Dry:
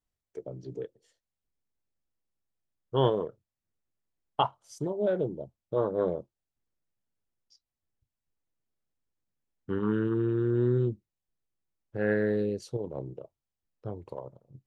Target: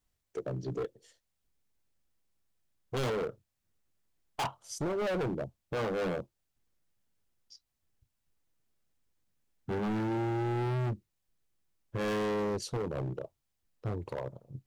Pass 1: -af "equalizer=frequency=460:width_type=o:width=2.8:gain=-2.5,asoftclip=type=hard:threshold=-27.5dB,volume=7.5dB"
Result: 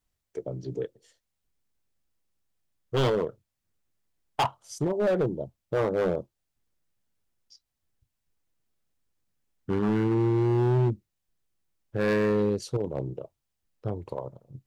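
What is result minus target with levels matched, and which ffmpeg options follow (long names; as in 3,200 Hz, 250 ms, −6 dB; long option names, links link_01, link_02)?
hard clipping: distortion −6 dB
-af "equalizer=frequency=460:width_type=o:width=2.8:gain=-2.5,asoftclip=type=hard:threshold=-37.5dB,volume=7.5dB"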